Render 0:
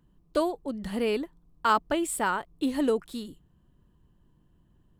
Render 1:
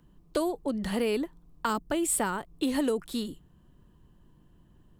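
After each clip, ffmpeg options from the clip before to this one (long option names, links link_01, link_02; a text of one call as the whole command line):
ffmpeg -i in.wav -filter_complex "[0:a]equalizer=frequency=75:width=0.62:gain=-2.5,acrossover=split=340|6200[link_01][link_02][link_03];[link_01]alimiter=level_in=9.5dB:limit=-24dB:level=0:latency=1,volume=-9.5dB[link_04];[link_02]acompressor=threshold=-34dB:ratio=6[link_05];[link_04][link_05][link_03]amix=inputs=3:normalize=0,volume=5.5dB" out.wav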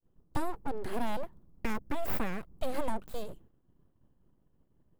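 ffmpeg -i in.wav -af "agate=range=-33dB:threshold=-50dB:ratio=3:detection=peak,aeval=exprs='abs(val(0))':channel_layout=same,equalizer=frequency=5000:width=0.31:gain=-11" out.wav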